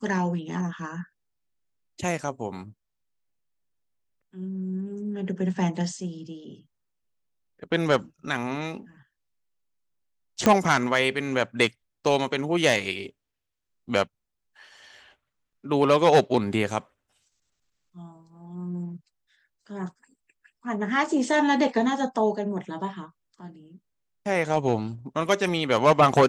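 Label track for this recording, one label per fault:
10.460000	10.460000	click −6 dBFS

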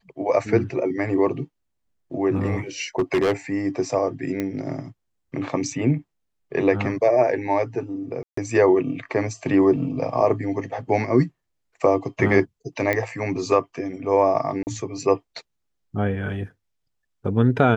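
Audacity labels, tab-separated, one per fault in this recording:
2.980000	3.330000	clipping −16 dBFS
4.400000	4.400000	click −13 dBFS
8.230000	8.370000	drop-out 144 ms
12.930000	12.930000	click −10 dBFS
14.630000	14.670000	drop-out 39 ms

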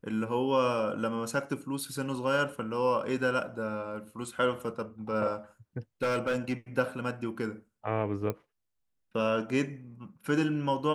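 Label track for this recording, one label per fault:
6.020000	6.530000	clipping −24.5 dBFS
8.300000	8.300000	click −19 dBFS

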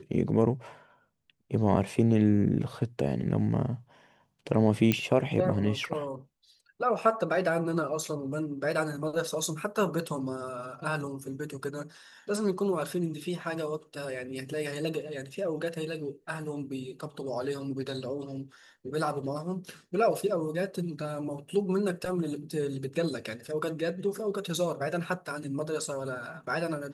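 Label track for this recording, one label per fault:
4.920000	4.920000	click −11 dBFS

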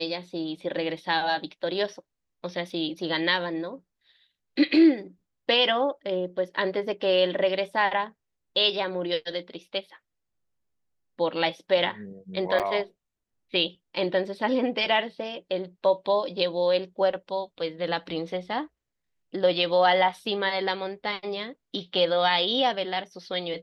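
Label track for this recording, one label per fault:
2.700000	2.700000	drop-out 2.5 ms
12.590000	12.600000	drop-out 7.7 ms

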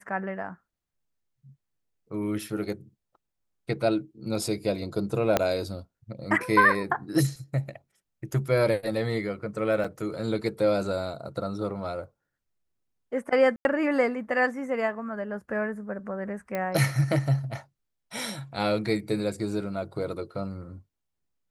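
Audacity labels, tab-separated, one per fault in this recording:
5.370000	5.370000	click −7 dBFS
9.840000	9.850000	drop-out 5.2 ms
13.560000	13.650000	drop-out 91 ms
16.550000	16.550000	click −17 dBFS

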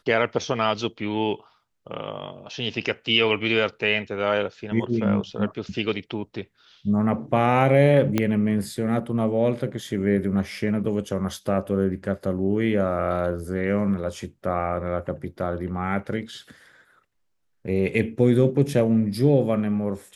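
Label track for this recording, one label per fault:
8.180000	8.180000	click −8 dBFS

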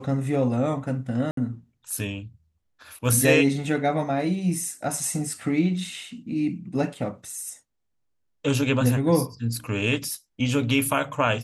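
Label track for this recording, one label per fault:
1.310000	1.370000	drop-out 63 ms

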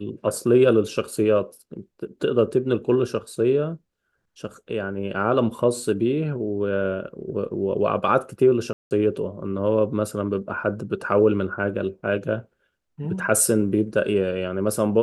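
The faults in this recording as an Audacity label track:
8.730000	8.910000	drop-out 179 ms

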